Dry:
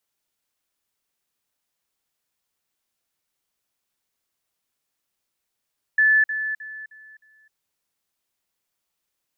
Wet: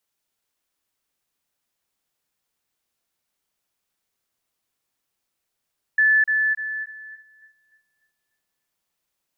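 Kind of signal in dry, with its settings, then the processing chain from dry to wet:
level ladder 1740 Hz -13.5 dBFS, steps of -10 dB, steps 5, 0.26 s 0.05 s
on a send: darkening echo 0.296 s, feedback 50%, low-pass 1700 Hz, level -4 dB

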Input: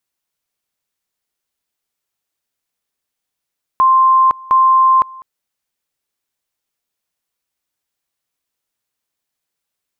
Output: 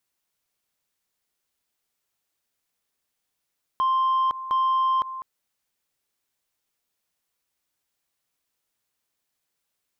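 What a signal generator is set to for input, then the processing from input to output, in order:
two-level tone 1050 Hz -7 dBFS, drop 24 dB, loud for 0.51 s, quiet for 0.20 s, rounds 2
limiter -16.5 dBFS; soft clip -17.5 dBFS

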